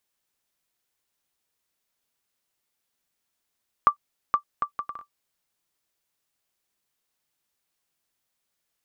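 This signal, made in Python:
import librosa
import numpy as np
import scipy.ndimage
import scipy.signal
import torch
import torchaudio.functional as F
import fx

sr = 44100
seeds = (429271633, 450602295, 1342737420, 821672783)

y = fx.bouncing_ball(sr, first_gap_s=0.47, ratio=0.6, hz=1170.0, decay_ms=95.0, level_db=-6.5)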